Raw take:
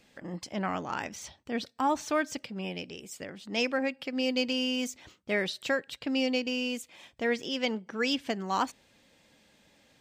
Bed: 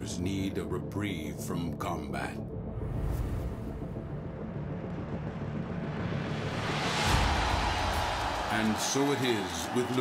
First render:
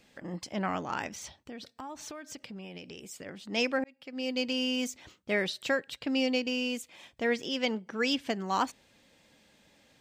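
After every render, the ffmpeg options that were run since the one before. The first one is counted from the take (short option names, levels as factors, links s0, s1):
-filter_complex "[0:a]asplit=3[s0][s1][s2];[s0]afade=t=out:st=1.38:d=0.02[s3];[s1]acompressor=threshold=0.0112:ratio=8:attack=3.2:release=140:knee=1:detection=peak,afade=t=in:st=1.38:d=0.02,afade=t=out:st=3.25:d=0.02[s4];[s2]afade=t=in:st=3.25:d=0.02[s5];[s3][s4][s5]amix=inputs=3:normalize=0,asplit=2[s6][s7];[s6]atrim=end=3.84,asetpts=PTS-STARTPTS,afade=t=out:st=3.836:d=0.004:c=hsin[s8];[s7]atrim=start=3.84,asetpts=PTS-STARTPTS,afade=t=in:d=1.03:c=qsin[s9];[s8][s9]concat=n=2:v=0:a=1"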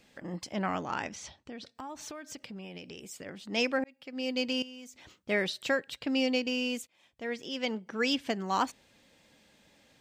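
-filter_complex "[0:a]asettb=1/sr,asplit=3[s0][s1][s2];[s0]atrim=end=0.894[s3];[s1]atrim=start=0.89:end=1.75,asetpts=PTS-STARTPTS,afade=t=in:d=0.004:c=qsin,afade=t=out:st=0.856:d=0.004:c=qsin,lowpass=7600[s4];[s2]atrim=start=1.746[s5];[s3][s4]acrossfade=d=0.004:c1=hsin:c2=qsin[s6];[s6][s5]acrossfade=d=0.004:c1=qsin:c2=hsin,asettb=1/sr,asplit=3[s7][s8][s9];[s7]atrim=end=4.624[s10];[s8]atrim=start=4.62:end=5.15,asetpts=PTS-STARTPTS,afade=t=in:d=0.004:c=qsin,afade=t=out:st=0.526:d=0.004:c=qsin,acompressor=threshold=0.00355:ratio=3:attack=3.2:release=140:knee=1:detection=peak[s11];[s9]atrim=start=5.146[s12];[s10][s11]acrossfade=d=0.004:c1=hsin:c2=qsin[s13];[s13][s12]acrossfade=d=0.004:c1=qsin:c2=hsin,asplit=2[s14][s15];[s14]atrim=end=6.87,asetpts=PTS-STARTPTS,afade=t=out:st=6.866:d=0.004:c=hsin:silence=0.0944061[s16];[s15]atrim=start=6.87,asetpts=PTS-STARTPTS,afade=t=in:d=1.11:silence=0.0944061[s17];[s16][s17]concat=n=2:v=0:a=1"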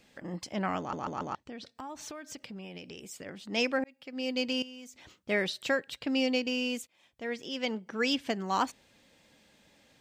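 -filter_complex "[0:a]asplit=5[s0][s1][s2][s3][s4];[s0]atrim=end=0.932[s5];[s1]atrim=start=0.788:end=0.932[s6];[s2]atrim=start=0.788:end=0.932[s7];[s3]atrim=start=0.788:end=0.932[s8];[s4]atrim=start=1.348[s9];[s5][s6]acrossfade=d=0.004:c1=hsin:c2=hsin[s10];[s10][s7]acrossfade=d=0.004:c1=hsin:c2=hsin[s11];[s11][s8]acrossfade=d=0.004:c1=hsin:c2=hsin[s12];[s12][s9]acrossfade=d=0.004:c1=hsin:c2=hsin"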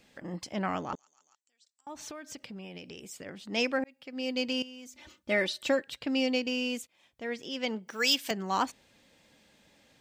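-filter_complex "[0:a]asettb=1/sr,asplit=3[s0][s1][s2];[s0]atrim=end=0.954[s3];[s1]atrim=start=0.95:end=1.87,asetpts=PTS-STARTPTS,afade=t=in:d=0.004:c=qsin,afade=t=out:st=0.916:d=0.004:c=qsin,bandpass=f=7500:t=q:w=5.8[s4];[s2]atrim=start=1.866[s5];[s3][s4]acrossfade=d=0.004:c1=hsin:c2=qsin[s6];[s6][s5]acrossfade=d=0.004:c1=qsin:c2=hsin,asettb=1/sr,asplit=3[s7][s8][s9];[s7]atrim=end=4.864[s10];[s8]atrim=start=4.86:end=5.82,asetpts=PTS-STARTPTS,afade=t=in:d=0.004:c=qsin,afade=t=out:st=0.956:d=0.004:c=qsin,aecho=1:1:3.4:0.65,atrim=end_sample=42336[s11];[s9]atrim=start=5.816[s12];[s10][s11]acrossfade=d=0.004:c1=hsin:c2=qsin[s13];[s13][s12]acrossfade=d=0.004:c1=qsin:c2=hsin,asettb=1/sr,asplit=3[s14][s15][s16];[s14]atrim=end=7.884[s17];[s15]atrim=start=7.88:end=8.31,asetpts=PTS-STARTPTS,afade=t=in:d=0.004:c=qsin,afade=t=out:st=0.426:d=0.004:c=qsin,aemphasis=mode=production:type=riaa[s18];[s16]atrim=start=8.306[s19];[s17][s18]acrossfade=d=0.004:c1=hsin:c2=qsin[s20];[s20][s19]acrossfade=d=0.004:c1=qsin:c2=hsin"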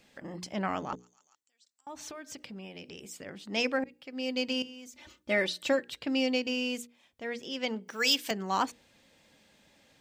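-af "bandreject=f=60:t=h:w=6,bandreject=f=120:t=h:w=6,bandreject=f=180:t=h:w=6,bandreject=f=240:t=h:w=6,bandreject=f=300:t=h:w=6,bandreject=f=360:t=h:w=6,bandreject=f=420:t=h:w=6,bandreject=f=480:t=h:w=6"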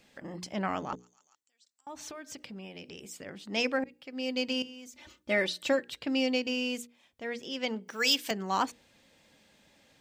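-af anull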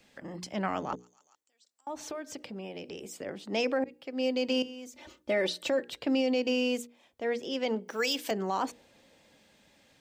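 -filter_complex "[0:a]acrossover=split=320|830|7600[s0][s1][s2][s3];[s1]dynaudnorm=f=100:g=21:m=2.82[s4];[s0][s4][s2][s3]amix=inputs=4:normalize=0,alimiter=limit=0.1:level=0:latency=1:release=42"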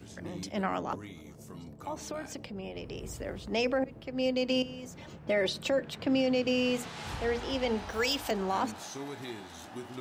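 -filter_complex "[1:a]volume=0.237[s0];[0:a][s0]amix=inputs=2:normalize=0"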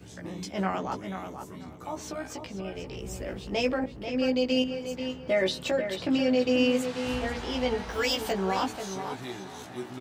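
-filter_complex "[0:a]asplit=2[s0][s1];[s1]adelay=16,volume=0.75[s2];[s0][s2]amix=inputs=2:normalize=0,asplit=2[s3][s4];[s4]adelay=488,lowpass=f=4500:p=1,volume=0.398,asplit=2[s5][s6];[s6]adelay=488,lowpass=f=4500:p=1,volume=0.22,asplit=2[s7][s8];[s8]adelay=488,lowpass=f=4500:p=1,volume=0.22[s9];[s3][s5][s7][s9]amix=inputs=4:normalize=0"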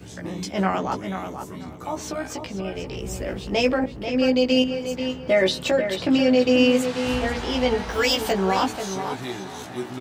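-af "volume=2.11"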